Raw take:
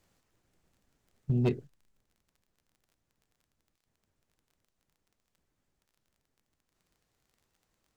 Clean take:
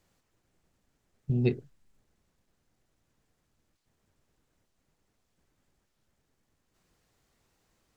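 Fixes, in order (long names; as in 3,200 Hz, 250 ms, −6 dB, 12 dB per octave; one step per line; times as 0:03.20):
clipped peaks rebuilt −21 dBFS
click removal
level correction +6 dB, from 0:01.67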